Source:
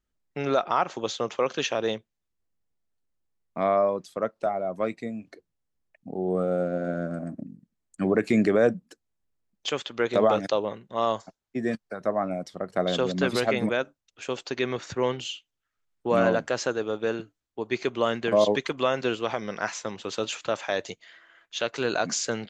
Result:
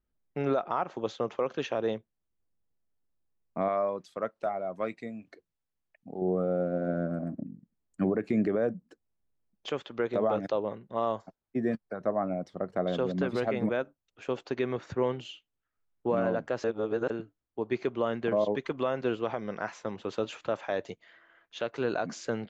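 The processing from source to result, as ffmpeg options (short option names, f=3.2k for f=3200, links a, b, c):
-filter_complex "[0:a]asettb=1/sr,asplit=3[a][b][c];[a]atrim=end=3.684[d];[b]atrim=start=3.68:end=6.22,asetpts=PTS-STARTPTS,afade=t=in:d=0.004:c=qsin,afade=t=out:st=2.536:d=0.004:c=qsin,tiltshelf=f=1.2k:g=-6.5[e];[c]atrim=start=6.216[f];[d][e]acrossfade=d=0.004:c1=hsin:c2=qsin[g];[g][f]acrossfade=d=0.004:c1=qsin:c2=hsin,asplit=3[h][i][j];[h]atrim=end=16.642[k];[i]atrim=start=16.638:end=17.102,asetpts=PTS-STARTPTS,areverse[l];[j]atrim=start=17.098[m];[k][l]acrossfade=d=0.004:c1=hsin:c2=hsin[n];[n][m]acrossfade=d=0.004:c1=hsin:c2=hsin,lowpass=f=1.1k:p=1,alimiter=limit=-18dB:level=0:latency=1:release=338"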